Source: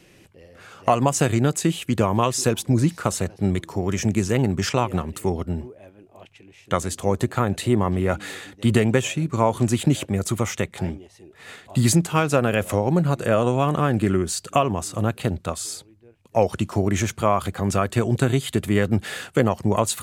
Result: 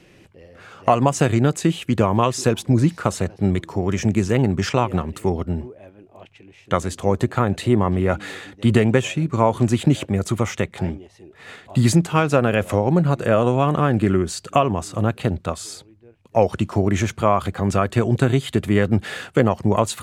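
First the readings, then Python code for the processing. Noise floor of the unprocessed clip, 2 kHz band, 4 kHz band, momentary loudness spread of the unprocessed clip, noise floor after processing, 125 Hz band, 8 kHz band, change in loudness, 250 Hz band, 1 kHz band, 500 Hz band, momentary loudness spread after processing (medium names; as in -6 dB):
-54 dBFS, +1.5 dB, 0.0 dB, 7 LU, -52 dBFS, +2.5 dB, -3.5 dB, +2.0 dB, +2.5 dB, +2.0 dB, +2.5 dB, 7 LU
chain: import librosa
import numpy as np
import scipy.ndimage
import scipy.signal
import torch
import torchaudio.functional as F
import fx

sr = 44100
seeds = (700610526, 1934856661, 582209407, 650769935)

y = fx.lowpass(x, sr, hz=3900.0, slope=6)
y = y * 10.0 ** (2.5 / 20.0)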